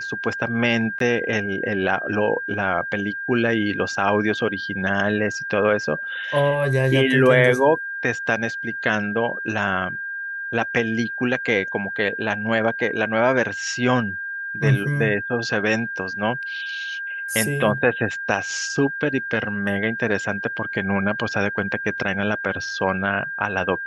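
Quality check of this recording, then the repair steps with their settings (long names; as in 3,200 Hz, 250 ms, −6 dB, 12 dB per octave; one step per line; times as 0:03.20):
whistle 1,600 Hz −27 dBFS
0:00.99–0:01.00: drop-out 13 ms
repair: notch filter 1,600 Hz, Q 30
repair the gap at 0:00.99, 13 ms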